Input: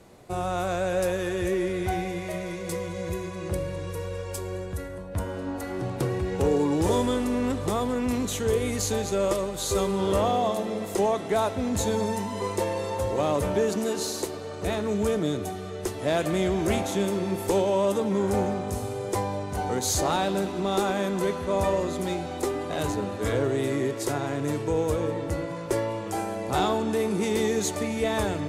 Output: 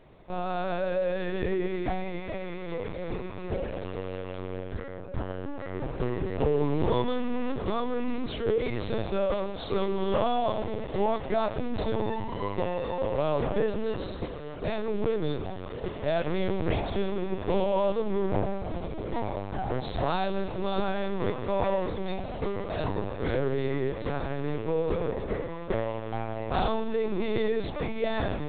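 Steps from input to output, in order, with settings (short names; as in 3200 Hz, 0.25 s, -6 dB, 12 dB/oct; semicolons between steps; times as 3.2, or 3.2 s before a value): 18.63–19.36 frequency shift -74 Hz; on a send: dark delay 0.141 s, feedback 55%, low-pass 910 Hz, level -19 dB; on the sum: LPC vocoder at 8 kHz pitch kept; gain -2 dB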